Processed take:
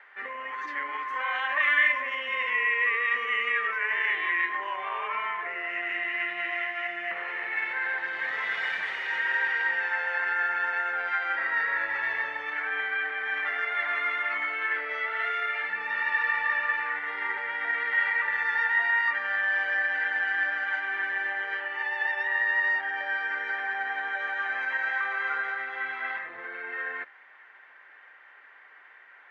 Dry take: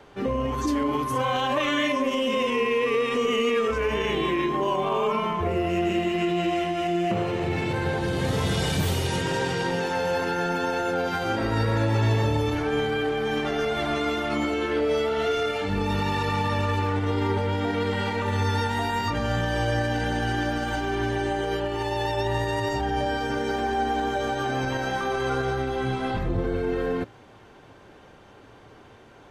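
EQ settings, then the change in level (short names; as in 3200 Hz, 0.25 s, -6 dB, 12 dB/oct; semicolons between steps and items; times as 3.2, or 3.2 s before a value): HPF 1200 Hz 12 dB/oct; synth low-pass 1900 Hz, resonance Q 6.4; -3.0 dB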